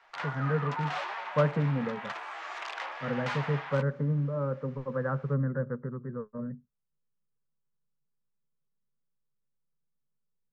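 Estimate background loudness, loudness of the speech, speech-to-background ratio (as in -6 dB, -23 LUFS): -37.5 LUFS, -32.0 LUFS, 5.5 dB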